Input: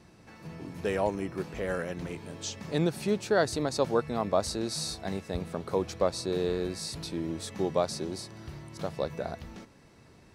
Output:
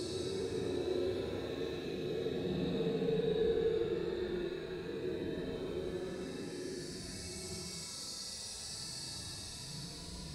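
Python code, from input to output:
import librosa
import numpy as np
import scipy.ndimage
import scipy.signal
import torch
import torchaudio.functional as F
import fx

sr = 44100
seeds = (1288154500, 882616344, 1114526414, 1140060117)

y = fx.phase_scramble(x, sr, seeds[0], window_ms=200)
y = fx.paulstretch(y, sr, seeds[1], factor=14.0, window_s=0.05, from_s=6.25)
y = y * 10.0 ** (-6.5 / 20.0)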